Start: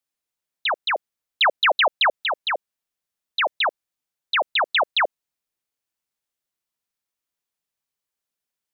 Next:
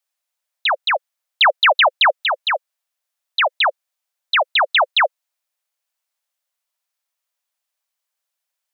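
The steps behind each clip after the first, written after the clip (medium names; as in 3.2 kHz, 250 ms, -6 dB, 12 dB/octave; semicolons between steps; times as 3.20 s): steep high-pass 520 Hz 96 dB/octave; trim +5 dB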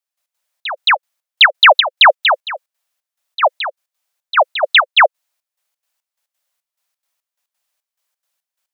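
trance gate "..x.xxx..xx.xx" 175 bpm -12 dB; trim +6.5 dB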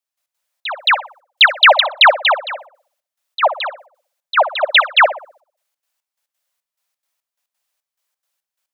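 tape echo 61 ms, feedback 48%, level -10 dB, low-pass 1.2 kHz; trim -1 dB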